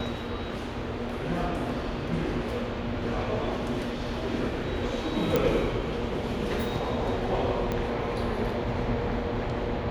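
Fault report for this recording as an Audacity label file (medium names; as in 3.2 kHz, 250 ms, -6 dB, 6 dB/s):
5.360000	5.360000	pop -10 dBFS
7.720000	7.720000	pop -17 dBFS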